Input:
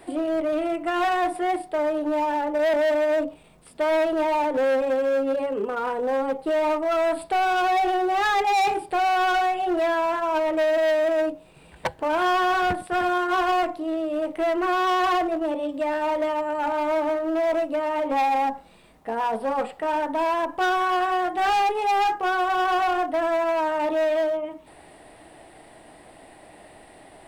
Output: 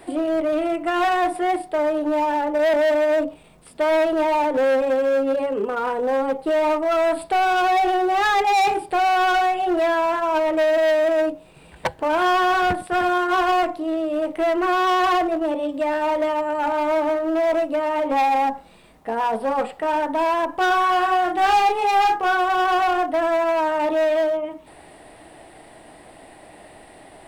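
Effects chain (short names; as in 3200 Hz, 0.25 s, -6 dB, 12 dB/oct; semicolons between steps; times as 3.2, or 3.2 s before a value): 20.67–22.37 doubler 34 ms -6.5 dB; gain +3 dB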